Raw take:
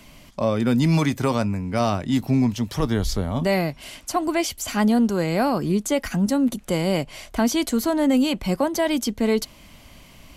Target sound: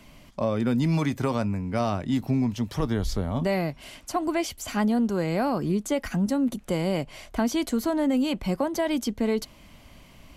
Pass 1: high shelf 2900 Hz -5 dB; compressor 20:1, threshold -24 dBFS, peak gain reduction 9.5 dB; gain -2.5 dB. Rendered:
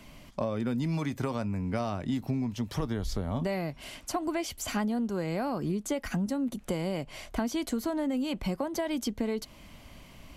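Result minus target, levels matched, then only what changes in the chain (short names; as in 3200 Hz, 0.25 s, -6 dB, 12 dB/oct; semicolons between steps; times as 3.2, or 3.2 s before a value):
compressor: peak gain reduction +7 dB
change: compressor 20:1, threshold -16.5 dBFS, peak gain reduction 3 dB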